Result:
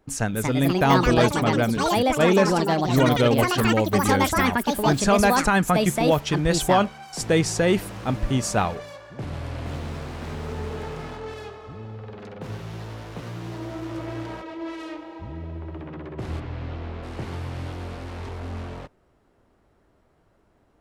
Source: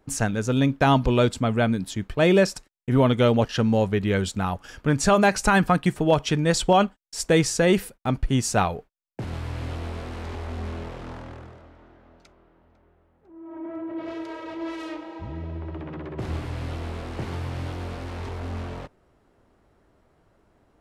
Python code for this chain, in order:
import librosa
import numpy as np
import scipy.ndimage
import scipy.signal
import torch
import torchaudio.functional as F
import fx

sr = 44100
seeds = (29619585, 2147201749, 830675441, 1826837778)

y = fx.echo_pitch(x, sr, ms=287, semitones=5, count=3, db_per_echo=-3.0)
y = fx.air_absorb(y, sr, metres=170.0, at=(16.39, 17.02), fade=0.02)
y = y * librosa.db_to_amplitude(-1.0)